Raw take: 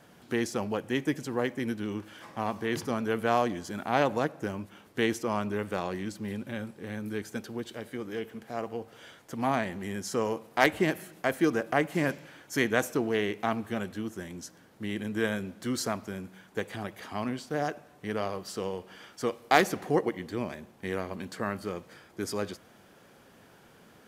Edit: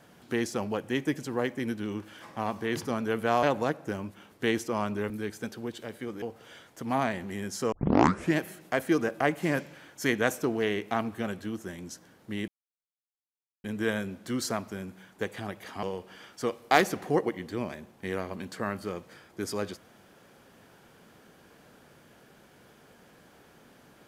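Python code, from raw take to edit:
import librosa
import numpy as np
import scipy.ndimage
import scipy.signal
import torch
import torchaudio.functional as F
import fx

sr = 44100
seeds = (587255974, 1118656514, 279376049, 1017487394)

y = fx.edit(x, sr, fx.cut(start_s=3.43, length_s=0.55),
    fx.cut(start_s=5.65, length_s=1.37),
    fx.cut(start_s=8.14, length_s=0.6),
    fx.tape_start(start_s=10.24, length_s=0.65),
    fx.insert_silence(at_s=15.0, length_s=1.16),
    fx.cut(start_s=17.19, length_s=1.44), tone=tone)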